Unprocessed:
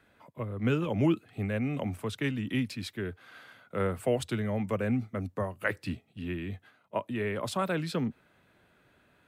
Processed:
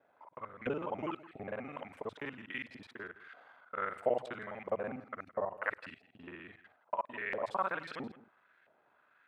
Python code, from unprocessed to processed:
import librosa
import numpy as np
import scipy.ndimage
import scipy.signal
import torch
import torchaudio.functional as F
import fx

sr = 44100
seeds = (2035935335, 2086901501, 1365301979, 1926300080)

y = fx.local_reverse(x, sr, ms=41.0)
y = fx.filter_lfo_bandpass(y, sr, shape='saw_up', hz=1.5, low_hz=630.0, high_hz=1900.0, q=2.1)
y = y + 10.0 ** (-17.5 / 20.0) * np.pad(y, (int(165 * sr / 1000.0), 0))[:len(y)]
y = y * 10.0 ** (3.0 / 20.0)